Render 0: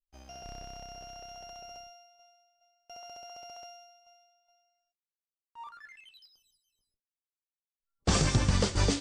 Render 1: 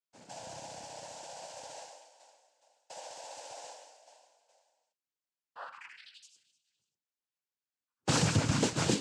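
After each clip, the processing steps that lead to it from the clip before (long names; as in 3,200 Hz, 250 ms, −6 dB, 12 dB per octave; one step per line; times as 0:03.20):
cochlear-implant simulation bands 8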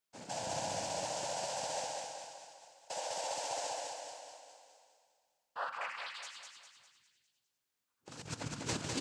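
compressor whose output falls as the input rises −37 dBFS, ratio −0.5
on a send: repeating echo 202 ms, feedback 48%, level −3.5 dB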